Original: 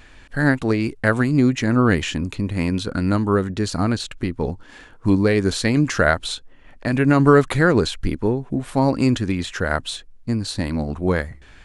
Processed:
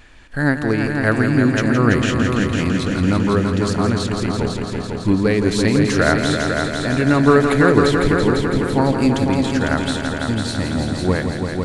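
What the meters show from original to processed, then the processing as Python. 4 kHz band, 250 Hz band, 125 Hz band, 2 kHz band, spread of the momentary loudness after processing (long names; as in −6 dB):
+3.0 dB, +3.0 dB, +2.5 dB, +3.0 dB, 8 LU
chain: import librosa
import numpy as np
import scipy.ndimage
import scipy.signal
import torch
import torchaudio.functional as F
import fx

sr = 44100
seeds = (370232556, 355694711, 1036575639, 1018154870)

y = fx.echo_heads(x, sr, ms=167, heads='all three', feedback_pct=64, wet_db=-8.5)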